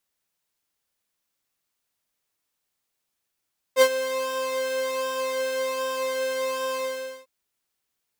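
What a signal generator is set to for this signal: synth patch with pulse-width modulation C5, sub -19 dB, noise -18 dB, filter highpass, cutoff 260 Hz, Q 0.95, filter envelope 0.5 oct, attack 56 ms, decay 0.07 s, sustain -13.5 dB, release 0.50 s, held 3.00 s, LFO 1.3 Hz, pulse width 35%, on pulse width 11%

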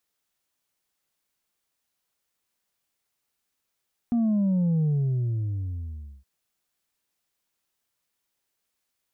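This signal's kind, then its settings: sub drop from 240 Hz, over 2.12 s, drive 2.5 dB, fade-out 1.42 s, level -20.5 dB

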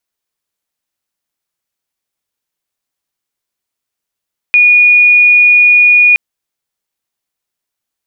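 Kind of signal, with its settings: tone sine 2.45 kHz -3 dBFS 1.62 s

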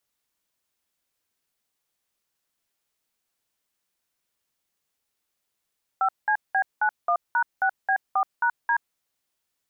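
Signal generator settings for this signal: DTMF "5CB91#6B4#D", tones 77 ms, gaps 191 ms, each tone -21.5 dBFS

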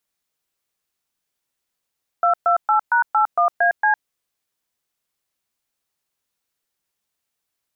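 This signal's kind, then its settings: DTMF "228#81AC", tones 107 ms, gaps 122 ms, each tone -16 dBFS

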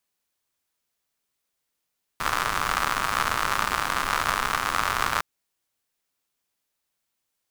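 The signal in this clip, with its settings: rain from filtered ticks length 3.01 s, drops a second 130, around 1.2 kHz, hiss -9.5 dB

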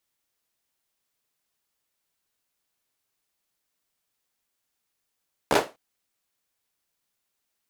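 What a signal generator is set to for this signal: hand clap length 0.25 s, bursts 4, apart 14 ms, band 510 Hz, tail 0.25 s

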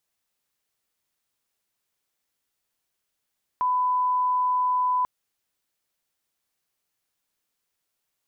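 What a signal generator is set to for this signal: line-up tone -20 dBFS 1.44 s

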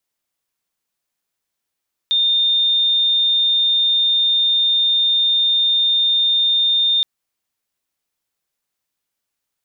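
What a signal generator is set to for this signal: tone sine 3.63 kHz -13 dBFS 4.92 s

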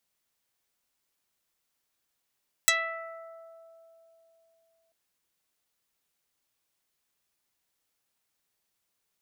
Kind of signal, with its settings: plucked string E5, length 2.24 s, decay 3.62 s, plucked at 0.13, dark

